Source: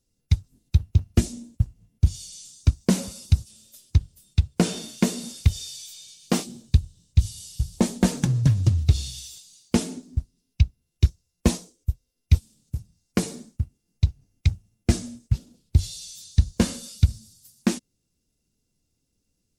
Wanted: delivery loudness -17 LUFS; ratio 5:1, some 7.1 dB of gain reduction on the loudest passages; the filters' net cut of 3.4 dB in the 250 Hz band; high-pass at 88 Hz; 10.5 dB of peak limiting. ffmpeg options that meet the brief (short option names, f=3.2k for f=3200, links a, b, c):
-af "highpass=88,equalizer=f=250:t=o:g=-4.5,acompressor=threshold=-23dB:ratio=5,volume=19.5dB,alimiter=limit=0dB:level=0:latency=1"